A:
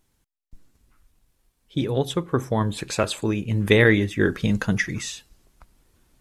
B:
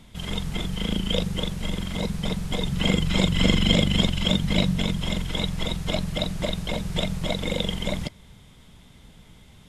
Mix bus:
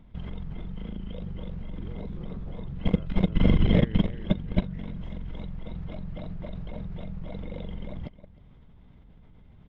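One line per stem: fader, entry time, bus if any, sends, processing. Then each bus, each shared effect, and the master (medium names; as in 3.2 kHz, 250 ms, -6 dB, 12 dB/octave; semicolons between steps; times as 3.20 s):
-9.0 dB, 0.00 s, no send, echo send -5 dB, spectrogram pixelated in time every 100 ms; hum notches 50/100/150/200 Hz
+1.0 dB, 0.00 s, no send, echo send -13.5 dB, low-pass 3.9 kHz 6 dB/octave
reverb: none
echo: delay 311 ms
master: bass shelf 74 Hz +6 dB; level held to a coarse grid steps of 17 dB; tape spacing loss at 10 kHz 39 dB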